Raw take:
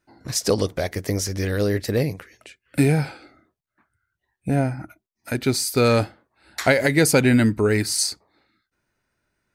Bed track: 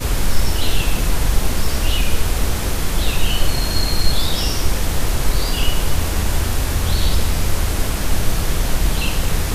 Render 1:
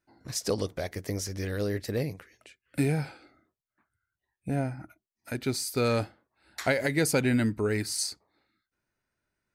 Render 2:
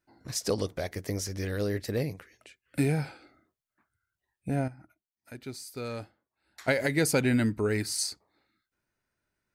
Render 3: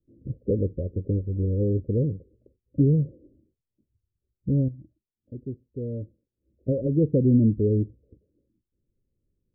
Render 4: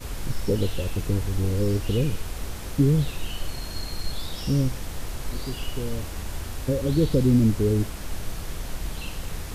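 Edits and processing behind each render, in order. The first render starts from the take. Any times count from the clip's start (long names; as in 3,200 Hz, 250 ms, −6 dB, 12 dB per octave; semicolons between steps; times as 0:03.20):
level −8.5 dB
0:04.68–0:06.68: clip gain −10.5 dB
Butterworth low-pass 560 Hz 96 dB per octave; spectral tilt −3 dB per octave
mix in bed track −14 dB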